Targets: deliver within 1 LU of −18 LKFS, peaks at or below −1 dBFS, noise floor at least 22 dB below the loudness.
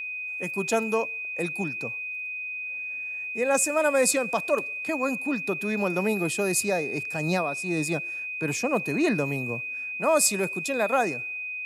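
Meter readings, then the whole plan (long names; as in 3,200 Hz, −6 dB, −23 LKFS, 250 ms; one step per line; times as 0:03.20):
interfering tone 2,500 Hz; level of the tone −31 dBFS; integrated loudness −26.5 LKFS; sample peak −8.5 dBFS; target loudness −18.0 LKFS
→ notch filter 2,500 Hz, Q 30
level +8.5 dB
brickwall limiter −1 dBFS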